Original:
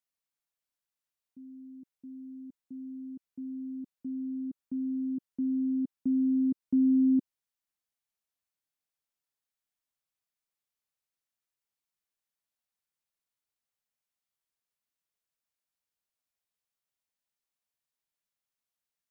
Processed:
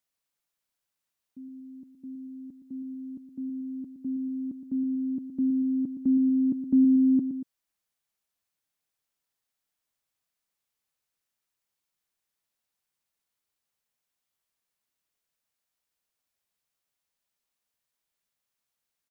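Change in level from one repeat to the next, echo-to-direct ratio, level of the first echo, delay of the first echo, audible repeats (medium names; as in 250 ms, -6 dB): -5.5 dB, -9.0 dB, -10.0 dB, 117 ms, 2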